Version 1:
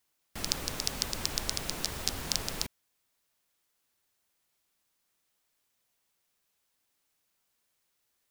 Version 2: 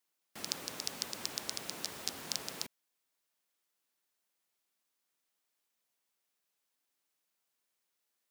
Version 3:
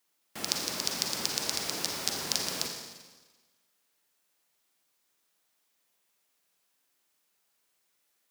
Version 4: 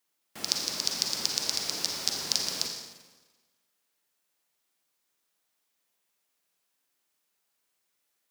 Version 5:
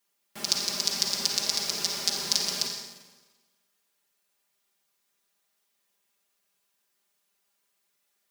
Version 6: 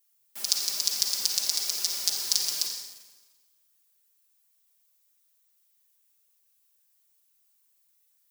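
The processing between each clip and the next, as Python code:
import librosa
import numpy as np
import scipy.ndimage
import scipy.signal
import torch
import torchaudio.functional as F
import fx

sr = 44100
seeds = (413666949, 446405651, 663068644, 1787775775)

y1 = scipy.signal.sosfilt(scipy.signal.butter(2, 190.0, 'highpass', fs=sr, output='sos'), x)
y1 = y1 * 10.0 ** (-6.0 / 20.0)
y2 = fx.rev_schroeder(y1, sr, rt60_s=1.3, comb_ms=38, drr_db=2.5)
y2 = y2 * 10.0 ** (6.5 / 20.0)
y3 = fx.dynamic_eq(y2, sr, hz=5000.0, q=1.2, threshold_db=-46.0, ratio=4.0, max_db=7)
y3 = y3 * 10.0 ** (-3.0 / 20.0)
y4 = y3 + 0.82 * np.pad(y3, (int(5.0 * sr / 1000.0), 0))[:len(y3)]
y5 = fx.riaa(y4, sr, side='recording')
y5 = y5 * 10.0 ** (-8.5 / 20.0)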